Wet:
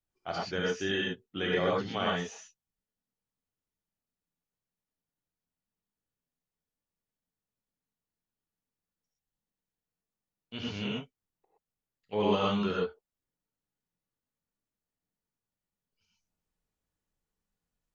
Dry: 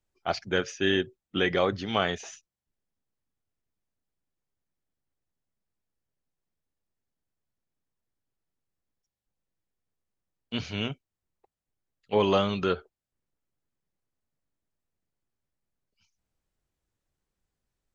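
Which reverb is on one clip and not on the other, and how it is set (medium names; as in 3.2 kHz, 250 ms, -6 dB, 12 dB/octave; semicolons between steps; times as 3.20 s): gated-style reverb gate 140 ms rising, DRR -4 dB; trim -9 dB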